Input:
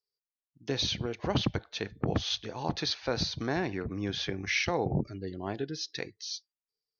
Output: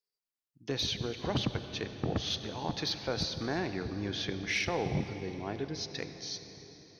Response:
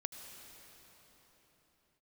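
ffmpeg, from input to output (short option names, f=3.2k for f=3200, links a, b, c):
-filter_complex "[0:a]asoftclip=type=tanh:threshold=-17.5dB,asplit=2[a][b];[1:a]atrim=start_sample=2205[c];[b][c]afir=irnorm=-1:irlink=0,volume=4dB[d];[a][d]amix=inputs=2:normalize=0,volume=-8.5dB"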